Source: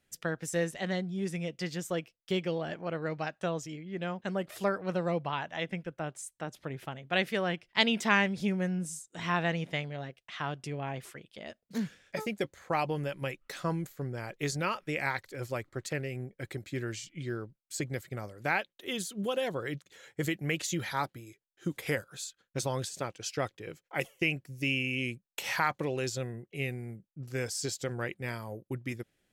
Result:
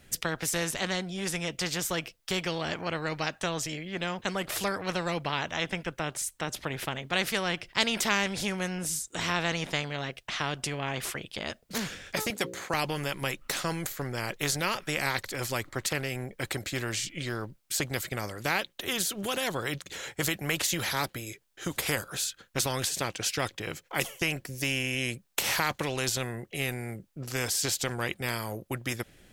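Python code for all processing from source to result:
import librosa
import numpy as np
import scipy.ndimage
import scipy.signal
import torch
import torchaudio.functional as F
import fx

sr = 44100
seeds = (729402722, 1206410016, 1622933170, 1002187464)

y = fx.chain(x, sr, fx.highpass(hz=180.0, slope=12),
    fx.hum_notches(base_hz=60, count=9), at=(12.3, 12.74))
y = fx.low_shelf(y, sr, hz=120.0, db=7.5)
y = fx.spectral_comp(y, sr, ratio=2.0)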